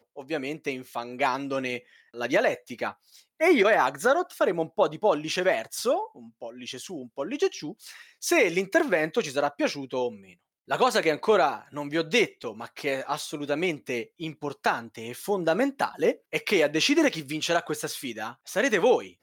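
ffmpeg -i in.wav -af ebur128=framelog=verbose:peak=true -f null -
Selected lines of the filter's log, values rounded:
Integrated loudness:
  I:         -26.3 LUFS
  Threshold: -36.8 LUFS
Loudness range:
  LRA:         4.6 LU
  Threshold: -46.7 LUFS
  LRA low:   -29.2 LUFS
  LRA high:  -24.7 LUFS
True peak:
  Peak:       -9.4 dBFS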